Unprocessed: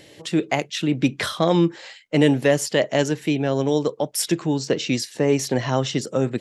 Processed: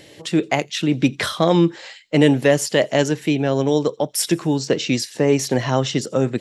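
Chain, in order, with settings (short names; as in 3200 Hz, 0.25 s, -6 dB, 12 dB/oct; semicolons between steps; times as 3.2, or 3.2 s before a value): thin delay 85 ms, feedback 53%, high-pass 3600 Hz, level -24 dB; gain +2.5 dB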